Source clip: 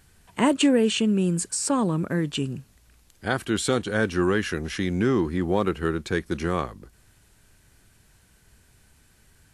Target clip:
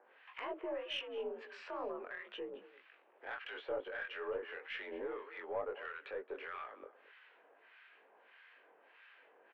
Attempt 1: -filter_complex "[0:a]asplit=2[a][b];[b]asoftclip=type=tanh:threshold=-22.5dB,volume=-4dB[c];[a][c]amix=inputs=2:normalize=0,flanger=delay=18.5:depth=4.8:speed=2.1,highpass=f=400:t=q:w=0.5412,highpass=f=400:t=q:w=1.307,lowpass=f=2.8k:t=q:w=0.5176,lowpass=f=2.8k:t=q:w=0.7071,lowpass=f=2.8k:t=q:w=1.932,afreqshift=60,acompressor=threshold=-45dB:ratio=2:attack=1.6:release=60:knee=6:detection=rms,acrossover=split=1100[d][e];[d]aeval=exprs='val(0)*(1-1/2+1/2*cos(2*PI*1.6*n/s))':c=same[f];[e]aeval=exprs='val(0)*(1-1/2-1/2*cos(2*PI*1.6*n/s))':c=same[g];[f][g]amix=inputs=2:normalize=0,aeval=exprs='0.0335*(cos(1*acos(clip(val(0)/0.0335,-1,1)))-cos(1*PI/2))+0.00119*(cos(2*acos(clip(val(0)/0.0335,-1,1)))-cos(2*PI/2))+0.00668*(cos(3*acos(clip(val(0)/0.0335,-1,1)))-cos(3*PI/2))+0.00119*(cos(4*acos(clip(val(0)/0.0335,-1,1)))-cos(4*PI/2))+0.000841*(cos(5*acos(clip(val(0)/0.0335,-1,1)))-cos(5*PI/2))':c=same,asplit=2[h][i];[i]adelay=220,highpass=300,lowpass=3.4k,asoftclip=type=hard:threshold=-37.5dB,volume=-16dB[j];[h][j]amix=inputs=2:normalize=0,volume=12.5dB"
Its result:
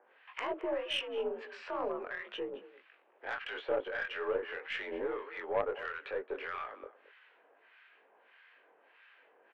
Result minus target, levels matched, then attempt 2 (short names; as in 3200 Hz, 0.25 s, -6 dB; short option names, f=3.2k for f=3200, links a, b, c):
compressor: peak gain reduction -5 dB
-filter_complex "[0:a]asplit=2[a][b];[b]asoftclip=type=tanh:threshold=-22.5dB,volume=-4dB[c];[a][c]amix=inputs=2:normalize=0,flanger=delay=18.5:depth=4.8:speed=2.1,highpass=f=400:t=q:w=0.5412,highpass=f=400:t=q:w=1.307,lowpass=f=2.8k:t=q:w=0.5176,lowpass=f=2.8k:t=q:w=0.7071,lowpass=f=2.8k:t=q:w=1.932,afreqshift=60,acompressor=threshold=-55.5dB:ratio=2:attack=1.6:release=60:knee=6:detection=rms,acrossover=split=1100[d][e];[d]aeval=exprs='val(0)*(1-1/2+1/2*cos(2*PI*1.6*n/s))':c=same[f];[e]aeval=exprs='val(0)*(1-1/2-1/2*cos(2*PI*1.6*n/s))':c=same[g];[f][g]amix=inputs=2:normalize=0,aeval=exprs='0.0335*(cos(1*acos(clip(val(0)/0.0335,-1,1)))-cos(1*PI/2))+0.00119*(cos(2*acos(clip(val(0)/0.0335,-1,1)))-cos(2*PI/2))+0.00668*(cos(3*acos(clip(val(0)/0.0335,-1,1)))-cos(3*PI/2))+0.00119*(cos(4*acos(clip(val(0)/0.0335,-1,1)))-cos(4*PI/2))+0.000841*(cos(5*acos(clip(val(0)/0.0335,-1,1)))-cos(5*PI/2))':c=same,asplit=2[h][i];[i]adelay=220,highpass=300,lowpass=3.4k,asoftclip=type=hard:threshold=-37.5dB,volume=-16dB[j];[h][j]amix=inputs=2:normalize=0,volume=12.5dB"